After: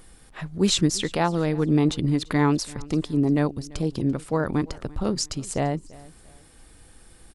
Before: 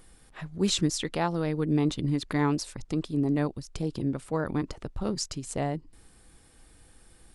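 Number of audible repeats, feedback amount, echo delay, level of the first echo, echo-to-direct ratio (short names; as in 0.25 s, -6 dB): 2, 33%, 0.34 s, -22.0 dB, -21.5 dB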